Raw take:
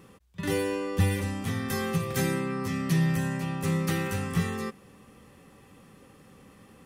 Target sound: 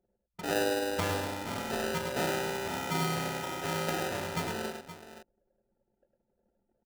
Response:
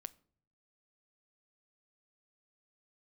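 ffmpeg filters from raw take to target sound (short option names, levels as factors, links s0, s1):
-filter_complex "[0:a]acrusher=samples=40:mix=1:aa=0.000001,bass=f=250:g=-15,treble=f=4000:g=-1,anlmdn=0.0398,asplit=2[s0][s1];[s1]aecho=0:1:105|522:0.531|0.237[s2];[s0][s2]amix=inputs=2:normalize=0"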